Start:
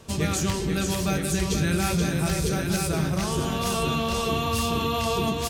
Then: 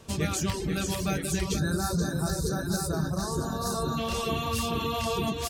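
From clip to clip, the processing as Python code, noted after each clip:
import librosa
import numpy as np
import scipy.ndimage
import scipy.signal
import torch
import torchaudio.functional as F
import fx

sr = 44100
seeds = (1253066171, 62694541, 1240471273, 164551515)

y = fx.dereverb_blind(x, sr, rt60_s=0.54)
y = fx.spec_box(y, sr, start_s=1.58, length_s=2.4, low_hz=1800.0, high_hz=3600.0, gain_db=-24)
y = y * librosa.db_to_amplitude(-2.5)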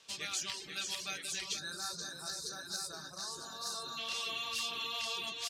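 y = fx.bandpass_q(x, sr, hz=3900.0, q=1.1)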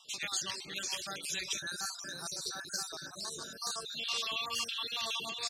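y = fx.spec_dropout(x, sr, seeds[0], share_pct=40)
y = fx.wow_flutter(y, sr, seeds[1], rate_hz=2.1, depth_cents=26.0)
y = y * librosa.db_to_amplitude(4.0)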